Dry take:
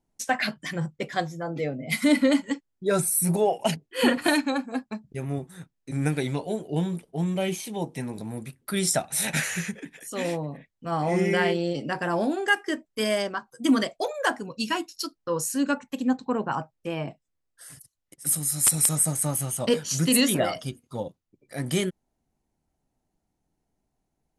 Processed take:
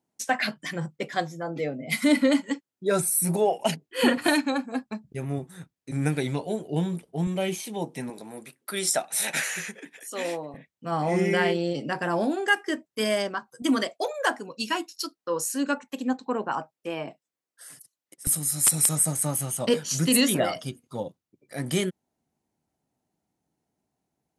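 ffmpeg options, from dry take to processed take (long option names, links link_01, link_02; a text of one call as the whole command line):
ffmpeg -i in.wav -af "asetnsamples=nb_out_samples=441:pad=0,asendcmd='3.89 highpass f 63;7.27 highpass f 160;8.1 highpass f 350;10.54 highpass f 110;13.62 highpass f 260;18.27 highpass f 110',highpass=160" out.wav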